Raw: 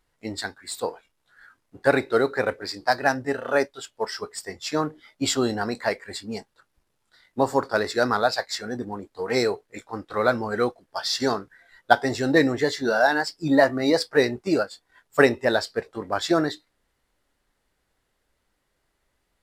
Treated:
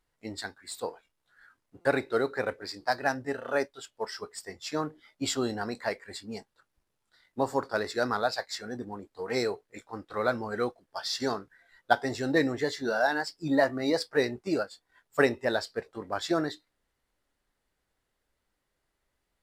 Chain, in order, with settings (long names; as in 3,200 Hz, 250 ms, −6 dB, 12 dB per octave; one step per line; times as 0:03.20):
buffer that repeats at 0:01.81, samples 256, times 6
level −6.5 dB